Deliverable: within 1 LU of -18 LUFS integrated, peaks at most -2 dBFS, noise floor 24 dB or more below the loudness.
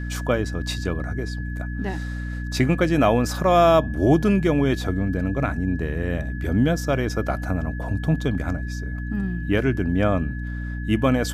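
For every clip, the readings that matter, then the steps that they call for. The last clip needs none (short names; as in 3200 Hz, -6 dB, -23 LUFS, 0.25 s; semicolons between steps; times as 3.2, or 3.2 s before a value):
hum 60 Hz; harmonics up to 300 Hz; hum level -27 dBFS; steady tone 1700 Hz; tone level -38 dBFS; loudness -23.0 LUFS; peak -5.0 dBFS; loudness target -18.0 LUFS
-> de-hum 60 Hz, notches 5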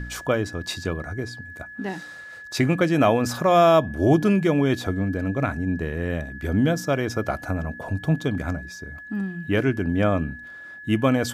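hum none; steady tone 1700 Hz; tone level -38 dBFS
-> notch 1700 Hz, Q 30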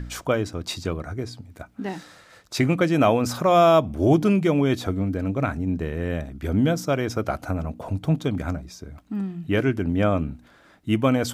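steady tone none; loudness -23.5 LUFS; peak -6.0 dBFS; loudness target -18.0 LUFS
-> gain +5.5 dB; limiter -2 dBFS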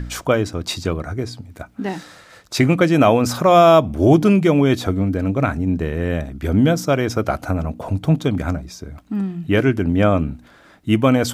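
loudness -18.0 LUFS; peak -2.0 dBFS; noise floor -49 dBFS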